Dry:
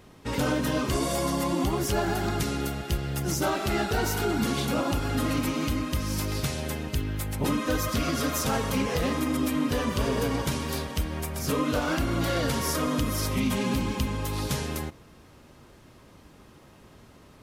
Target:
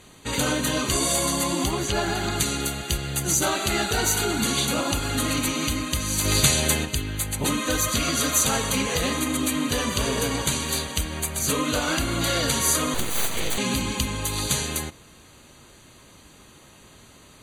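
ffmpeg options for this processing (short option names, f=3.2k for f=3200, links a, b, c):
-filter_complex "[0:a]asettb=1/sr,asplit=3[a][b][c];[a]atrim=end=1.714[d];[b]atrim=start=1.71:end=2.36,asetpts=PTS-STARTPTS,afade=t=in:d=0.004:c=qsin,afade=t=out:st=0.646:d=0.004:c=qsin,acrossover=split=5600[e][f];[f]acompressor=threshold=-50dB:ratio=4:attack=1:release=60[g];[e][g]amix=inputs=2:normalize=0[h];[c]atrim=start=2.356[i];[d][h]acrossfade=d=0.004:c1=hsin:c2=qsin[j];[j][i]acrossfade=d=0.004:c1=qsin:c2=hsin,lowpass=8.3k,asplit=3[k][l][m];[k]afade=t=out:st=6.24:d=0.02[n];[l]acontrast=56,afade=t=in:st=6.24:d=0.02,afade=t=out:st=6.84:d=0.02[o];[m]afade=t=in:st=6.84:d=0.02[p];[n][o][p]amix=inputs=3:normalize=0,crystalizer=i=5:c=0,asettb=1/sr,asplit=3[q][r][s];[q]atrim=end=12.944[t];[r]atrim=start=12.94:end=13.58,asetpts=PTS-STARTPTS,afade=t=in:d=0.004:c=qsin,afade=t=out:st=0.636:d=0.004:c=qsin,aeval=exprs='abs(val(0))':c=same[u];[s]atrim=start=13.576[v];[t][u]acrossfade=d=0.004:c1=hsin:c2=qsin[w];[w][v]acrossfade=d=0.004:c1=qsin:c2=hsin,asuperstop=centerf=5300:order=20:qfactor=5.3"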